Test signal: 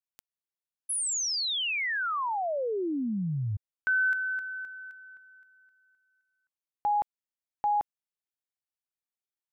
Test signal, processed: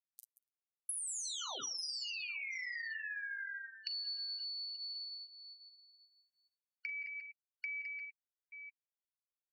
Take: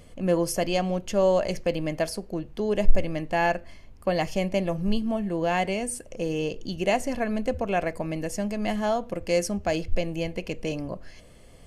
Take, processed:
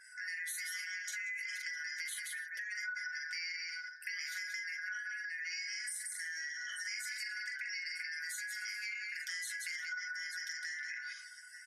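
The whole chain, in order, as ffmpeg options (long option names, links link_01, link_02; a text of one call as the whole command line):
ffmpeg -i in.wav -filter_complex "[0:a]afftfilt=real='real(if(lt(b,272),68*(eq(floor(b/68),0)*2+eq(floor(b/68),1)*0+eq(floor(b/68),2)*3+eq(floor(b/68),3)*1)+mod(b,68),b),0)':imag='imag(if(lt(b,272),68*(eq(floor(b/68),0)*2+eq(floor(b/68),1)*0+eq(floor(b/68),2)*3+eq(floor(b/68),3)*1)+mod(b,68),b),0)':win_size=2048:overlap=0.75,acrossover=split=330|2300[link_01][link_02][link_03];[link_01]acompressor=threshold=-39dB:ratio=4:attack=0.33:release=369:knee=2.83:detection=peak[link_04];[link_04][link_02][link_03]amix=inputs=3:normalize=0,aresample=32000,aresample=44100,flanger=delay=7.8:depth=1.1:regen=-13:speed=0.65:shape=sinusoidal,aderivative,asplit=2[link_05][link_06];[link_06]aecho=0:1:41|42|180|236|288|881:0.316|0.596|0.398|0.112|0.119|0.1[link_07];[link_05][link_07]amix=inputs=2:normalize=0,acompressor=threshold=-50dB:ratio=6:attack=22:release=44:knee=1:detection=peak,bandreject=frequency=60:width_type=h:width=6,bandreject=frequency=120:width_type=h:width=6,bandreject=frequency=180:width_type=h:width=6,bandreject=frequency=240:width_type=h:width=6,bandreject=frequency=300:width_type=h:width=6,bandreject=frequency=360:width_type=h:width=6,bandreject=frequency=420:width_type=h:width=6,bandreject=frequency=480:width_type=h:width=6,afftdn=noise_reduction=25:noise_floor=-68,lowshelf=frequency=480:gain=8.5,volume=6dB" out.wav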